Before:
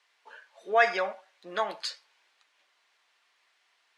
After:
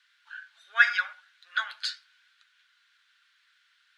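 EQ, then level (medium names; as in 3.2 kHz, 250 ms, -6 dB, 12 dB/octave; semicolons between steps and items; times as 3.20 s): ladder high-pass 1.4 kHz, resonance 80%; peaking EQ 3.6 kHz +10.5 dB 0.93 oct; treble shelf 5.8 kHz +7.5 dB; +4.5 dB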